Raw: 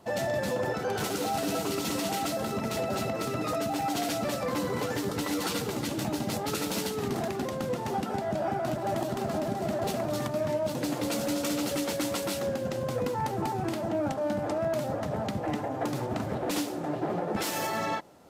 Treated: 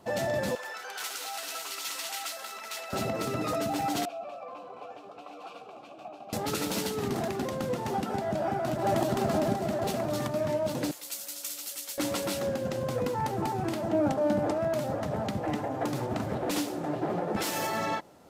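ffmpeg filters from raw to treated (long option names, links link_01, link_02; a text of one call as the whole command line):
ffmpeg -i in.wav -filter_complex "[0:a]asettb=1/sr,asplit=3[link_01][link_02][link_03];[link_01]atrim=end=0.554[link_04];[link_02]atrim=start=0.55:end=2.93,asetpts=PTS-STARTPTS,afade=type=in:duration=0.004:curve=qsin,afade=type=out:start_time=2.376:duration=0.004:curve=qsin,highpass=1300[link_05];[link_03]atrim=start=2.926[link_06];[link_04][link_05]acrossfade=duration=0.004:curve1=hsin:curve2=qsin[link_07];[link_07][link_06]acrossfade=duration=0.004:curve1=qsin:curve2=hsin,asettb=1/sr,asplit=3[link_08][link_09][link_10];[link_08]atrim=end=4.054[link_11];[link_09]atrim=start=4.05:end=6.33,asetpts=PTS-STARTPTS,afade=type=in:duration=0.004:curve=qsin,afade=type=out:start_time=2.276:duration=0.004:curve=qsin,asplit=3[link_12][link_13][link_14];[link_12]bandpass=frequency=730:width_type=q:width=8,volume=0dB[link_15];[link_13]bandpass=frequency=1090:width_type=q:width=8,volume=-6dB[link_16];[link_14]bandpass=frequency=2440:width_type=q:width=8,volume=-9dB[link_17];[link_15][link_16][link_17]amix=inputs=3:normalize=0[link_18];[link_10]atrim=start=6.326[link_19];[link_11][link_18]acrossfade=duration=0.004:curve1=hsin:curve2=qsin[link_20];[link_20][link_19]acrossfade=duration=0.004:curve1=qsin:curve2=hsin,asettb=1/sr,asplit=3[link_21][link_22][link_23];[link_21]atrim=end=10.914[link_24];[link_22]atrim=start=10.91:end=11.98,asetpts=PTS-STARTPTS,afade=type=in:duration=0.004:curve=qsin,afade=type=out:start_time=1.066:duration=0.004:curve=qsin,aderivative[link_25];[link_23]atrim=start=11.976[link_26];[link_24][link_25]acrossfade=duration=0.004:curve1=hsin:curve2=qsin[link_27];[link_27][link_26]acrossfade=duration=0.004:curve1=qsin:curve2=hsin,asettb=1/sr,asplit=3[link_28][link_29][link_30];[link_28]atrim=end=13.934[link_31];[link_29]atrim=start=13.93:end=14.51,asetpts=PTS-STARTPTS,afade=type=in:duration=0.004:curve=qsin,afade=type=out:start_time=0.576:duration=0.004:curve=qsin,equalizer=frequency=330:width=0.49:gain=4.5[link_32];[link_30]atrim=start=14.506[link_33];[link_31][link_32]acrossfade=duration=0.004:curve1=hsin:curve2=qsin[link_34];[link_34][link_33]acrossfade=duration=0.004:curve1=qsin:curve2=hsin,asplit=3[link_35][link_36][link_37];[link_35]atrim=end=8.792[link_38];[link_36]atrim=start=8.788:end=9.562,asetpts=PTS-STARTPTS,volume=3.5dB[link_39];[link_37]atrim=start=9.558[link_40];[link_38][link_39]acrossfade=duration=0.004:curve1=hsin:curve2=hsin[link_41];[link_41][link_40]acrossfade=duration=0.004:curve1=hsin:curve2=hsin" out.wav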